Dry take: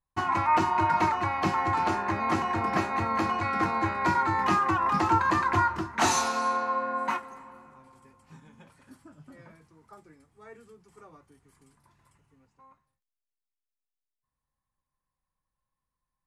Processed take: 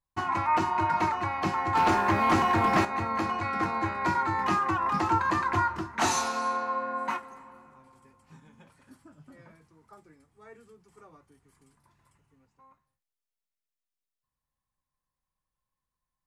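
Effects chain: 1.75–2.85 s: waveshaping leveller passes 2; trim -2 dB

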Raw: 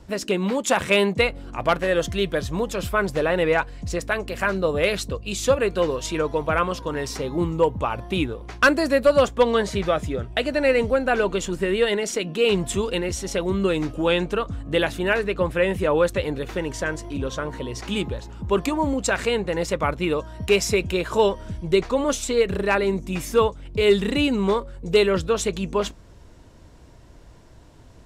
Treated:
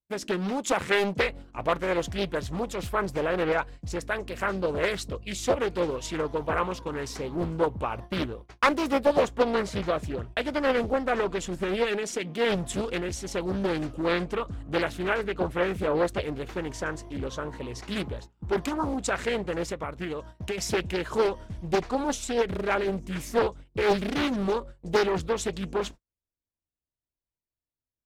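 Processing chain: gate -34 dBFS, range -44 dB; 19.70–20.58 s: compression 6:1, threshold -24 dBFS, peak gain reduction 10.5 dB; loudspeaker Doppler distortion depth 0.74 ms; trim -5.5 dB

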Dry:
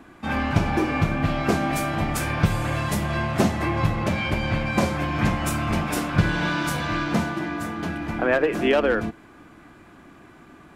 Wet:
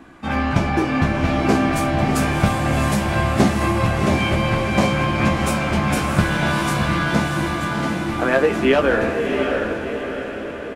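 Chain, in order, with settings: peaking EQ 14 kHz -8.5 dB 0.39 oct; doubling 15 ms -5.5 dB; echo that smears into a reverb 696 ms, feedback 52%, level -4 dB; trim +2 dB

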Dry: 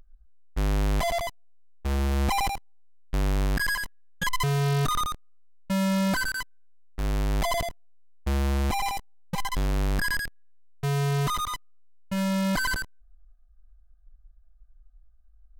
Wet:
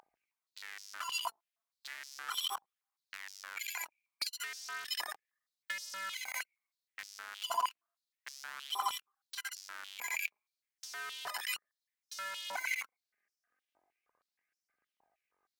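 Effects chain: octave divider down 1 oct, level -2 dB; compression 6:1, threshold -36 dBFS, peak gain reduction 15 dB; formant shift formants +6 st; phaser 0.34 Hz, delay 5 ms, feedback 36%; step-sequenced high-pass 6.4 Hz 850–5400 Hz

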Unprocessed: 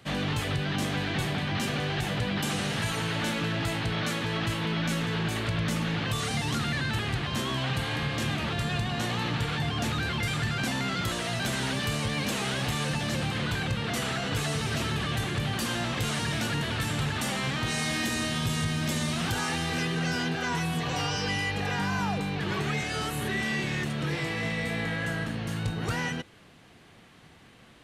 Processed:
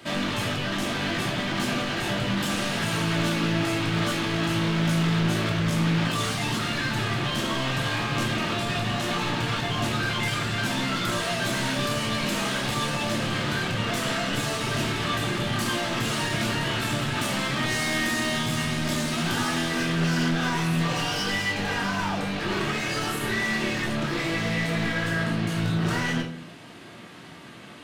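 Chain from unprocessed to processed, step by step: high-pass 140 Hz 12 dB/octave; in parallel at 0 dB: compression, threshold -38 dBFS, peak gain reduction 11.5 dB; on the sum: hard clipper -28.5 dBFS, distortion -10 dB; simulated room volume 440 m³, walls furnished, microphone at 2.8 m; loudspeaker Doppler distortion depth 0.12 ms

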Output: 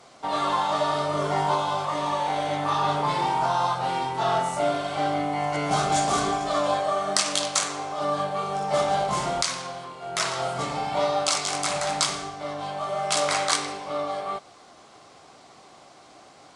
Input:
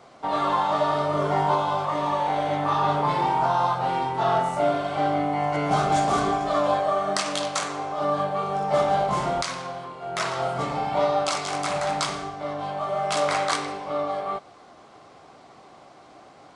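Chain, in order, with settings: peaking EQ 9.4 kHz +10.5 dB 2.7 oct; trim -2.5 dB

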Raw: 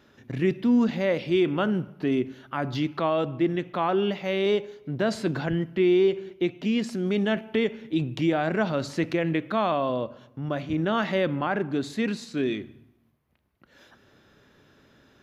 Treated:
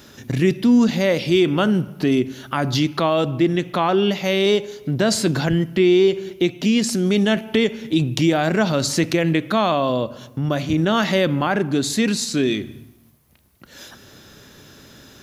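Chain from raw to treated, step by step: tone controls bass +3 dB, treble +15 dB; in parallel at +2.5 dB: compression, threshold -33 dBFS, peak gain reduction 16 dB; on the sum: trim +3 dB

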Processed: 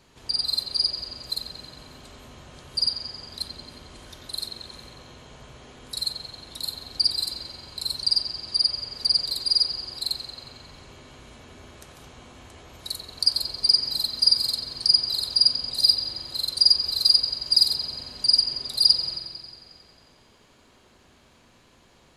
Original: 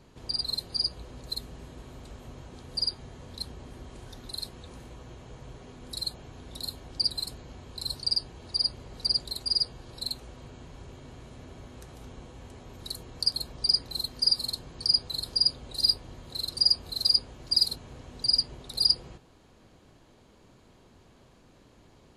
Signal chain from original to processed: tilt shelf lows -5.5 dB, about 860 Hz; feedback echo behind a low-pass 90 ms, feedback 68%, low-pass 3.4 kHz, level -4 dB; on a send at -15 dB: reverberation RT60 2.3 s, pre-delay 6 ms

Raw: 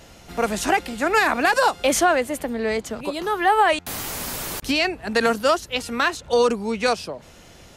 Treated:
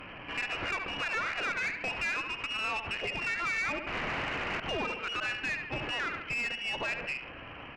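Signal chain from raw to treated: CVSD coder 32 kbps; feedback delay 70 ms, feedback 34%, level -12.5 dB; compression 6:1, threshold -29 dBFS, peak gain reduction 14.5 dB; tilt EQ +3.5 dB/octave; frequency inversion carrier 3.1 kHz; peak limiter -26.5 dBFS, peak gain reduction 8 dB; valve stage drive 31 dB, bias 0.35; trim +4.5 dB

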